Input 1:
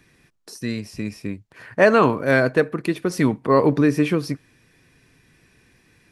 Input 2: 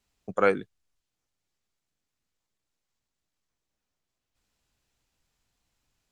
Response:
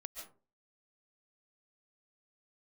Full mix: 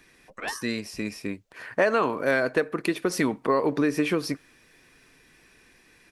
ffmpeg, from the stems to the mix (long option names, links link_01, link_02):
-filter_complex "[0:a]volume=2dB[link_01];[1:a]aecho=1:1:6.6:0.92,dynaudnorm=framelen=210:gausssize=9:maxgain=15.5dB,aeval=exprs='val(0)*sin(2*PI*880*n/s+880*0.65/1.8*sin(2*PI*1.8*n/s))':channel_layout=same,volume=-11dB[link_02];[link_01][link_02]amix=inputs=2:normalize=0,equalizer=frequency=110:width_type=o:width=1.9:gain=-12.5,acompressor=threshold=-20dB:ratio=4"